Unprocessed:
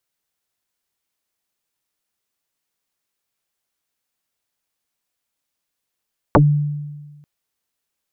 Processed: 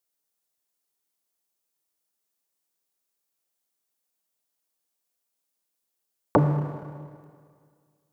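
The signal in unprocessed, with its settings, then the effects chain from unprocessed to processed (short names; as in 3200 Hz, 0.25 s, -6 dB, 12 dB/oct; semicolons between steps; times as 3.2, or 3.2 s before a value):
FM tone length 0.89 s, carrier 147 Hz, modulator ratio 0.99, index 11, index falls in 0.11 s exponential, decay 1.40 s, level -6 dB
HPF 350 Hz 6 dB/oct; bell 2100 Hz -9 dB 2.6 oct; Schroeder reverb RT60 2 s, combs from 26 ms, DRR 6 dB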